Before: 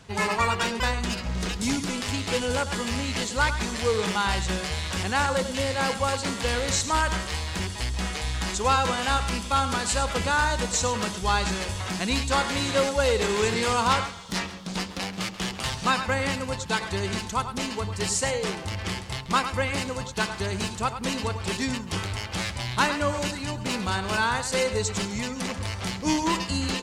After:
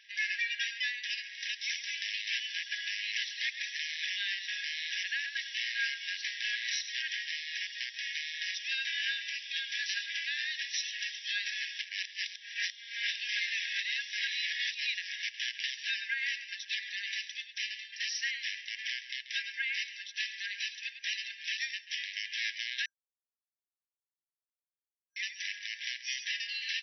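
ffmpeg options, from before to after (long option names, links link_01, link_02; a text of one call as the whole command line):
ffmpeg -i in.wav -filter_complex "[0:a]asplit=5[link_01][link_02][link_03][link_04][link_05];[link_01]atrim=end=11.792[link_06];[link_02]atrim=start=11.788:end=15.232,asetpts=PTS-STARTPTS,areverse[link_07];[link_03]atrim=start=15.228:end=22.86,asetpts=PTS-STARTPTS,afade=type=out:start_time=7.628:duration=0.004:curve=hsin[link_08];[link_04]atrim=start=22.86:end=25.16,asetpts=PTS-STARTPTS,volume=0[link_09];[link_05]atrim=start=25.16,asetpts=PTS-STARTPTS,afade=type=in:duration=0.004:curve=hsin[link_10];[link_06][link_07]acrossfade=duration=0.004:curve1=hsin:curve2=hsin[link_11];[link_08][link_09][link_10]concat=n=3:v=0:a=1[link_12];[link_11][link_12]acrossfade=duration=0.004:curve1=hsin:curve2=hsin,afftfilt=real='re*between(b*sr/4096,1600,5900)':imag='im*between(b*sr/4096,1600,5900)':win_size=4096:overlap=0.75,equalizer=frequency=4400:width=6:gain=-10.5,alimiter=limit=-22dB:level=0:latency=1:release=242" out.wav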